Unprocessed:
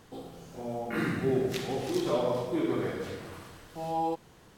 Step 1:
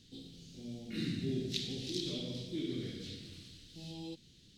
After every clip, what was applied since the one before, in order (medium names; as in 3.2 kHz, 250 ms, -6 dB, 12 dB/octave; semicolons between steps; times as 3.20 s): FFT filter 270 Hz 0 dB, 960 Hz -30 dB, 3.9 kHz +11 dB, 13 kHz -10 dB; trim -4.5 dB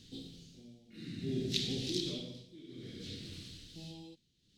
tremolo 0.58 Hz, depth 89%; trim +4 dB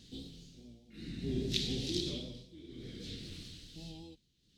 octave divider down 2 oct, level -6 dB; vibrato 5 Hz 44 cents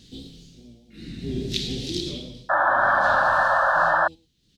delay 107 ms -16.5 dB; painted sound noise, 2.49–4.08 s, 530–1800 Hz -26 dBFS; trim +6.5 dB